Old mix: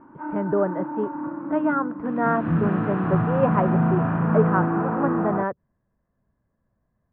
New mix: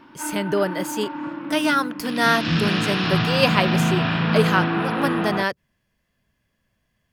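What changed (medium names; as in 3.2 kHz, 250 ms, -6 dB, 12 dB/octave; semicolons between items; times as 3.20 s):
speech: remove distance through air 160 m; master: remove low-pass 1.3 kHz 24 dB/octave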